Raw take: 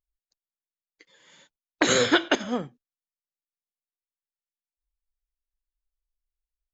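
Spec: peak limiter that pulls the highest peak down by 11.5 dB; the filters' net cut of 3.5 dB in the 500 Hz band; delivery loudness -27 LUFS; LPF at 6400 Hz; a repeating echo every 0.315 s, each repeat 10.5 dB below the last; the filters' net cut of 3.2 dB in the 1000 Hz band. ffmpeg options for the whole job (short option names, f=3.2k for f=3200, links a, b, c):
-af "lowpass=6.4k,equalizer=f=500:t=o:g=-3.5,equalizer=f=1k:t=o:g=-3.5,alimiter=limit=-19.5dB:level=0:latency=1,aecho=1:1:315|630|945:0.299|0.0896|0.0269,volume=4.5dB"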